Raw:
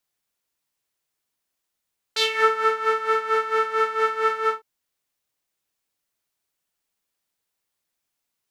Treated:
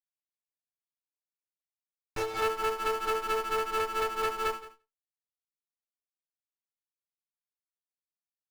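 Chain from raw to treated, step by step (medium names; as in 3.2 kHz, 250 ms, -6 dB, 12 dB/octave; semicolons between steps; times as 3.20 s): vowel filter a; tilt shelf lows -4.5 dB, about 770 Hz; low-pass that closes with the level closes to 950 Hz, closed at -31 dBFS; in parallel at -5.5 dB: sample-rate reducer 3 kHz, jitter 0%; on the sum: overload inside the chain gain 30 dB; on a send: feedback delay 172 ms, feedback 18%, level -17 dB; on the sum: expander -54 dBFS; sliding maximum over 9 samples; trim +8 dB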